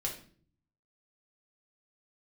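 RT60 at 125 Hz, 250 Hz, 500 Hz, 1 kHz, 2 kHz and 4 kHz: 1.0, 0.75, 0.55, 0.40, 0.40, 0.40 s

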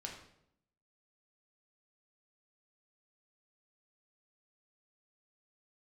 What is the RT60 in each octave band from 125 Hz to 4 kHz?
0.90, 0.95, 0.80, 0.65, 0.60, 0.55 s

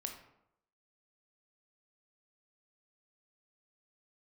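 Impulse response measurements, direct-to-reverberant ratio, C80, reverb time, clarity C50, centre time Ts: 3.5 dB, 10.0 dB, 0.80 s, 7.0 dB, 22 ms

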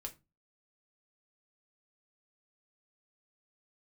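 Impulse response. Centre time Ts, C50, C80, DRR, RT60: 8 ms, 17.0 dB, 24.5 dB, 2.5 dB, 0.25 s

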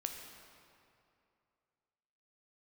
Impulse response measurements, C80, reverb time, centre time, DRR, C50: 5.5 dB, 2.6 s, 61 ms, 3.0 dB, 4.5 dB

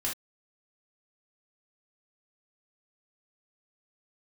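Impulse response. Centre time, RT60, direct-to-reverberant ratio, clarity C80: 25 ms, not exponential, -4.5 dB, 26.0 dB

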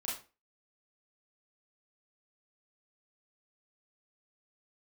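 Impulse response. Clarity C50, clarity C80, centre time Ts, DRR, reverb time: 5.0 dB, 12.0 dB, 41 ms, -6.5 dB, 0.35 s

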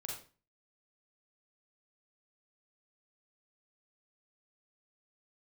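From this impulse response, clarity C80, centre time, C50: 8.0 dB, 40 ms, 2.5 dB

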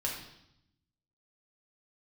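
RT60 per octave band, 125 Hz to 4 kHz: 1.3, 1.2, 0.80, 0.80, 0.75, 0.80 s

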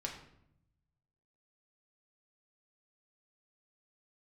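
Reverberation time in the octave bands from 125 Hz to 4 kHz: 1.6, 1.1, 0.80, 0.70, 0.60, 0.50 s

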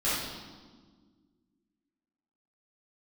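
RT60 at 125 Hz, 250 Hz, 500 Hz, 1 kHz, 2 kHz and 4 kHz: 2.1, 2.5, 1.8, 1.4, 1.1, 1.2 s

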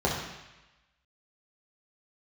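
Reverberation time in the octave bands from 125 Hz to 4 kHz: 1.0, 0.95, 0.95, 1.1, 1.2, 1.1 s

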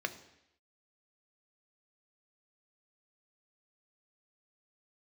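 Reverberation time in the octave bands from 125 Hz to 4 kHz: 0.75, 0.80, 0.80, 0.80, 0.90, 0.90 s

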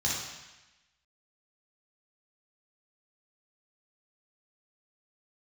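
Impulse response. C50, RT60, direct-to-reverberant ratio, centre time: -0.5 dB, 1.0 s, -5.5 dB, 70 ms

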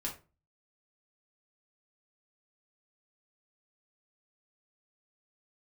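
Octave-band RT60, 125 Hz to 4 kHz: 0.50, 0.40, 0.35, 0.30, 0.25, 0.20 s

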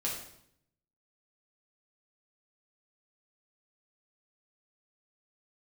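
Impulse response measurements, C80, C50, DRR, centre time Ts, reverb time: 7.0 dB, 3.5 dB, -4.5 dB, 40 ms, 0.70 s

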